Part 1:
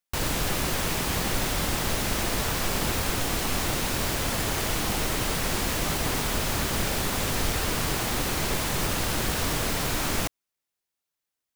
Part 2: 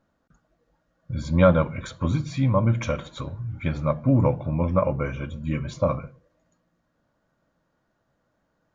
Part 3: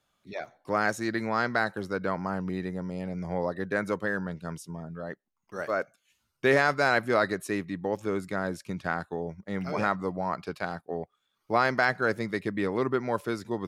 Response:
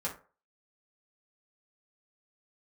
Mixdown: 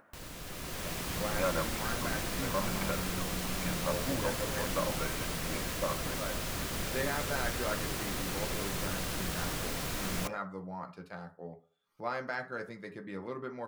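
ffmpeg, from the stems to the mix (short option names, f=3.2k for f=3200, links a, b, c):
-filter_complex "[0:a]bandreject=f=860:w=12,dynaudnorm=f=160:g=9:m=11dB,volume=-19.5dB,asplit=2[a][b];[b]volume=-18dB[c];[1:a]highpass=f=1.2k:p=1,asoftclip=type=tanh:threshold=-24dB,lowpass=f=2.2k:w=0.5412,lowpass=f=2.2k:w=1.3066,volume=-2dB[d];[2:a]adelay=500,volume=-16.5dB,asplit=2[e][f];[f]volume=-3.5dB[g];[3:a]atrim=start_sample=2205[h];[c][g]amix=inputs=2:normalize=0[i];[i][h]afir=irnorm=-1:irlink=0[j];[a][d][e][j]amix=inputs=4:normalize=0,acompressor=mode=upward:threshold=-48dB:ratio=2.5"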